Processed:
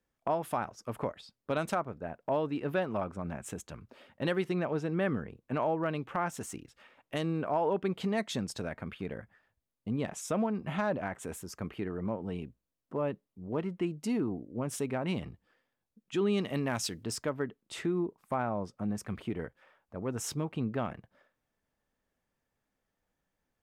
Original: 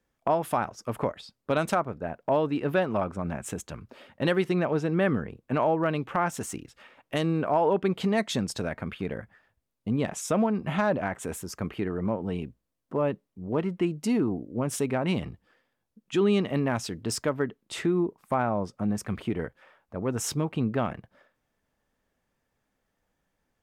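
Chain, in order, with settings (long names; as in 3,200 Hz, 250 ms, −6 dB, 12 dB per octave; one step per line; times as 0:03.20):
0:16.37–0:17.03: high-shelf EQ 4,100 Hz → 2,200 Hz +10.5 dB
level −6 dB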